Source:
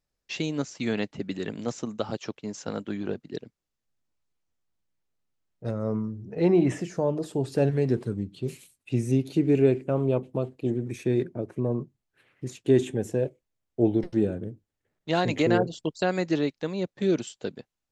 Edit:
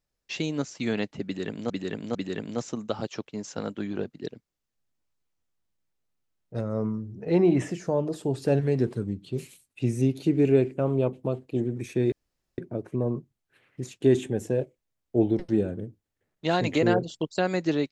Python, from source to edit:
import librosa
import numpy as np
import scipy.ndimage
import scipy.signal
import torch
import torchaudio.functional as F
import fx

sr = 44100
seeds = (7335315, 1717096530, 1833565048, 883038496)

y = fx.edit(x, sr, fx.repeat(start_s=1.25, length_s=0.45, count=3),
    fx.insert_room_tone(at_s=11.22, length_s=0.46), tone=tone)